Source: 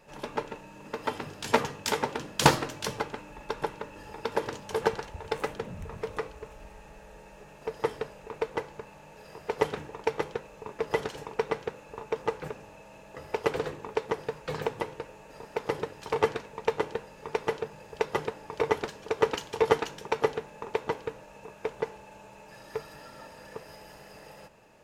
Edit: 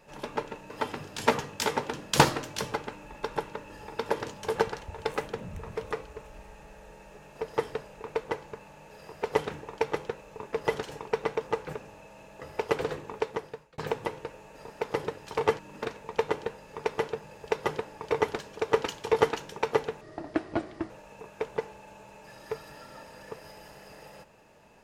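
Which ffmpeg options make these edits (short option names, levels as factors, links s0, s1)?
-filter_complex "[0:a]asplit=8[s0][s1][s2][s3][s4][s5][s6][s7];[s0]atrim=end=0.702[s8];[s1]atrim=start=0.958:end=11.622[s9];[s2]atrim=start=12.108:end=14.53,asetpts=PTS-STARTPTS,afade=t=out:st=1.832:d=0.59[s10];[s3]atrim=start=14.53:end=16.342,asetpts=PTS-STARTPTS,afade=t=in:d=0.004:c=hsin[s11];[s4]atrim=start=0.698:end=0.962[s12];[s5]atrim=start=16.338:end=20.504[s13];[s6]atrim=start=20.5:end=21.14,asetpts=PTS-STARTPTS,asetrate=31752,aresample=44100[s14];[s7]atrim=start=21.136[s15];[s8][s9]acrossfade=d=0.004:c1=hsin:c2=hsin[s16];[s10][s11]concat=n=2:v=0:a=1[s17];[s16][s17]acrossfade=d=0.004:c1=hsin:c2=hsin[s18];[s18][s12]acrossfade=d=0.004:c1=hsin:c2=hsin[s19];[s19][s13]acrossfade=d=0.004:c1=hsin:c2=hsin[s20];[s20][s14]acrossfade=d=0.004:c1=hsin:c2=hsin[s21];[s21][s15]acrossfade=d=0.004:c1=hsin:c2=hsin"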